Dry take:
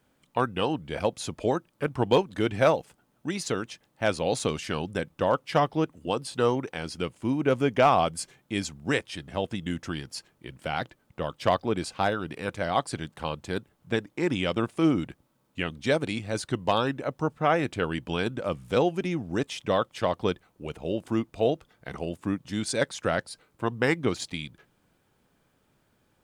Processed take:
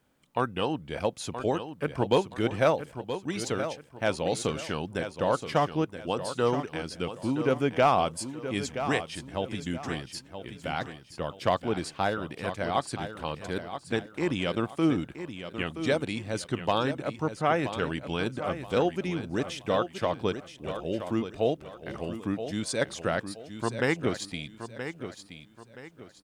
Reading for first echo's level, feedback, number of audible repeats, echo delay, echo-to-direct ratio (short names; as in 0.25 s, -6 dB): -10.0 dB, 33%, 3, 0.974 s, -9.5 dB